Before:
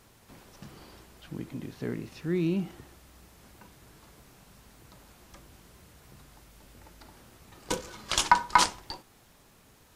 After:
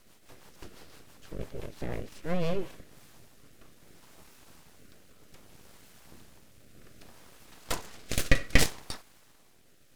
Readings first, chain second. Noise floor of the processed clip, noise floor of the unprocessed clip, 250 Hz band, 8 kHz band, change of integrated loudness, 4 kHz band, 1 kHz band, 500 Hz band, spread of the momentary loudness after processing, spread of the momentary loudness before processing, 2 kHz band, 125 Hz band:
-59 dBFS, -59 dBFS, -4.0 dB, -3.0 dB, -3.5 dB, -4.0 dB, -15.5 dB, +1.0 dB, 21 LU, 20 LU, -0.5 dB, +1.5 dB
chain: full-wave rectifier; rotary cabinet horn 6 Hz, later 0.65 Hz, at 2.29 s; trim +3.5 dB

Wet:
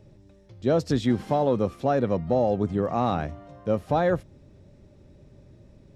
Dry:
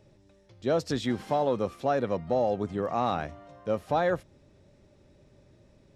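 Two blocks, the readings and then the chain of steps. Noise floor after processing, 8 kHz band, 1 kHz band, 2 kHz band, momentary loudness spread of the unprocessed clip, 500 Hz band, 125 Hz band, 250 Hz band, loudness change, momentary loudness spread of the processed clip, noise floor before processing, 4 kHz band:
-54 dBFS, no reading, +2.0 dB, +0.5 dB, 7 LU, +3.0 dB, +8.0 dB, +6.5 dB, +3.5 dB, 7 LU, -61 dBFS, 0.0 dB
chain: bass shelf 390 Hz +9 dB

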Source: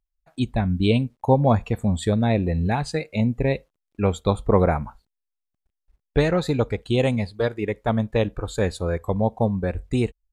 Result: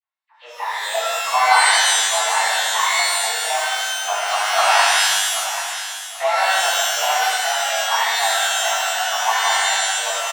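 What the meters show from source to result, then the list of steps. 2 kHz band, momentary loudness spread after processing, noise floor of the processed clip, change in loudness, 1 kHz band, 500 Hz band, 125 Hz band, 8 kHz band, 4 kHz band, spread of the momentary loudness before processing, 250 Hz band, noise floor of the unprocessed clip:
+16.5 dB, 9 LU, -40 dBFS, +6.0 dB, +12.0 dB, -3.0 dB, under -40 dB, +25.5 dB, +19.0 dB, 7 LU, under -40 dB, -82 dBFS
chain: median filter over 15 samples; reverse; upward compressor, threshold -39 dBFS; reverse; mistuned SSB +230 Hz 510–3400 Hz; phase dispersion lows, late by 44 ms, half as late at 1.6 kHz; on a send: feedback delay 783 ms, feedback 25%, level -11.5 dB; on the sum: pitch-shifted reverb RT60 1.4 s, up +12 st, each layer -2 dB, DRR -10.5 dB; trim -3.5 dB

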